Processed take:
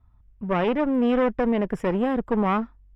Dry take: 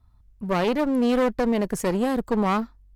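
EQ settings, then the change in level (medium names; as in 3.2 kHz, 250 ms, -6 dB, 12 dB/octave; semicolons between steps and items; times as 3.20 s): Savitzky-Golay filter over 25 samples; 0.0 dB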